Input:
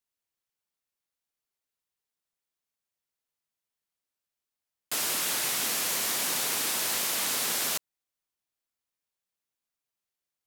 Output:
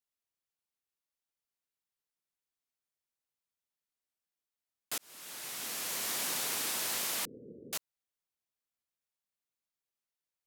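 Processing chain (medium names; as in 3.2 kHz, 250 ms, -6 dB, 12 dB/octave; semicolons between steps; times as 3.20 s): 4.98–6.18 s: fade in; 7.25–7.73 s: steep low-pass 500 Hz 72 dB/octave; trim -5.5 dB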